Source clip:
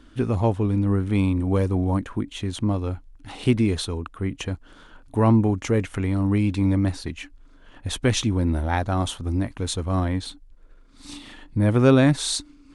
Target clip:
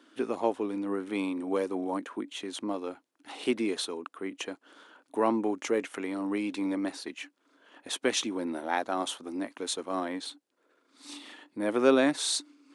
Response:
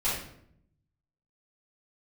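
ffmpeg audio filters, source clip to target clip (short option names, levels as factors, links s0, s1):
-af "highpass=f=290:w=0.5412,highpass=f=290:w=1.3066,volume=0.668"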